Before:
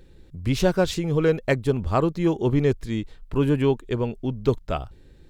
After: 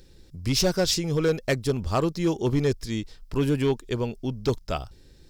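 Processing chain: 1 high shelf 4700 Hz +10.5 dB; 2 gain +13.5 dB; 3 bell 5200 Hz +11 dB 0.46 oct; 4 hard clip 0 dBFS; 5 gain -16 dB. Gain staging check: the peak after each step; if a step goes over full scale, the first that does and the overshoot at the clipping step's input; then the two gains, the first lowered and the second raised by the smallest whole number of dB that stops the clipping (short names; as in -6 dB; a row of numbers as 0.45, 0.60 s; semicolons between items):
-6.5, +7.0, +7.5, 0.0, -16.0 dBFS; step 2, 7.5 dB; step 2 +5.5 dB, step 5 -8 dB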